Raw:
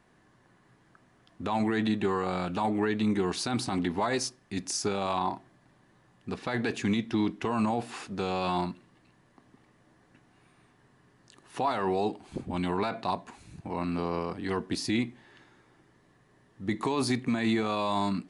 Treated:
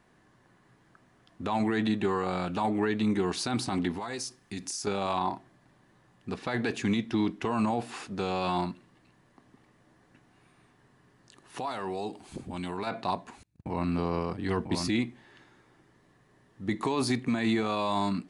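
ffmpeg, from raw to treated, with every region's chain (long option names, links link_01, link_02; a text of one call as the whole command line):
ffmpeg -i in.wav -filter_complex "[0:a]asettb=1/sr,asplit=3[link_01][link_02][link_03];[link_01]atrim=end=3.934[link_04];[link_02]atrim=start=3.93:end=4.87,asetpts=PTS-STARTPTS,afade=type=in:duration=0.004:curve=qsin,afade=type=out:start_time=0.936:duration=0.004:curve=qsin,highshelf=frequency=4600:gain=6,bandreject=frequency=600:width=7.2,acompressor=threshold=-32dB:ratio=6:attack=3.2:release=140:knee=1:detection=peak[link_05];[link_03]atrim=start=4.866[link_06];[link_04][link_05]acrossfade=duration=0.004:curve1=hsin:curve2=qsin[link_07];[link_07][link_06]acrossfade=duration=0.004:curve1=qsin:curve2=hsin,asettb=1/sr,asplit=3[link_08][link_09][link_10];[link_08]atrim=end=11.584[link_11];[link_09]atrim=start=11.58:end=12.87,asetpts=PTS-STARTPTS,afade=type=in:duration=0.004:curve=qsin,afade=type=out:start_time=1.286:duration=0.004:curve=qsin,aemphasis=mode=production:type=cd,acompressor=threshold=-40dB:ratio=1.5:attack=3.2:release=140:knee=1:detection=peak[link_12];[link_10]atrim=start=12.866[link_13];[link_11][link_12]acrossfade=duration=0.004:curve1=hsin:curve2=qsin[link_14];[link_14][link_13]acrossfade=duration=0.004:curve1=qsin:curve2=hsin,asettb=1/sr,asplit=3[link_15][link_16][link_17];[link_15]atrim=end=13.434[link_18];[link_16]atrim=start=13.43:end=14.88,asetpts=PTS-STARTPTS,afade=type=in:duration=0.004:curve=qsin,afade=type=out:start_time=1.446:duration=0.004:curve=qsin,agate=range=-33dB:threshold=-42dB:ratio=16:release=100:detection=peak,equalizer=frequency=91:width_type=o:width=1.8:gain=6.5,aecho=1:1:994:0.596,atrim=end_sample=63945[link_19];[link_17]atrim=start=14.876[link_20];[link_18][link_19]acrossfade=duration=0.004:curve1=hsin:curve2=qsin[link_21];[link_21][link_20]acrossfade=duration=0.004:curve1=qsin:curve2=hsin" out.wav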